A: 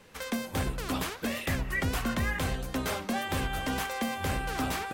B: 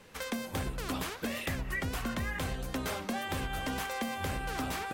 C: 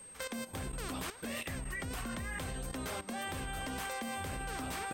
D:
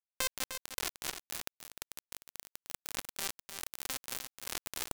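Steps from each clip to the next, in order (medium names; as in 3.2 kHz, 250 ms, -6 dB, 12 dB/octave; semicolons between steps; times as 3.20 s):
compression, threshold -31 dBFS, peak gain reduction 6 dB
whistle 8.4 kHz -45 dBFS; level held to a coarse grid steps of 13 dB
bit crusher 5-bit; on a send: delay 303 ms -9 dB; on the sum: trim +7.5 dB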